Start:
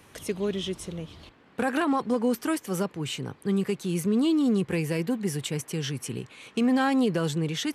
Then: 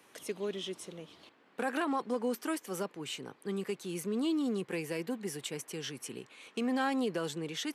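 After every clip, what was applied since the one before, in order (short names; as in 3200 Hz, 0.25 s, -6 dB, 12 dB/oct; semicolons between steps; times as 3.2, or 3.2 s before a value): HPF 270 Hz 12 dB/oct; gain -6 dB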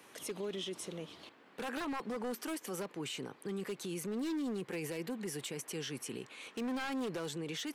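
wavefolder -28 dBFS; limiter -35.5 dBFS, peak gain reduction 7.5 dB; gain +3.5 dB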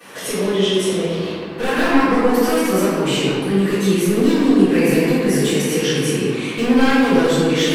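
reverb RT60 2.2 s, pre-delay 3 ms, DRR -19 dB; gain +3.5 dB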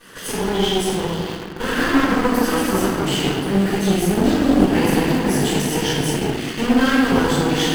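minimum comb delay 0.64 ms; in parallel at -12 dB: bit-crush 4-bit; on the sum: gain -2.5 dB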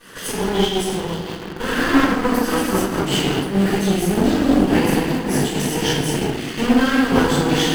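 noise-modulated level, depth 60%; gain +2.5 dB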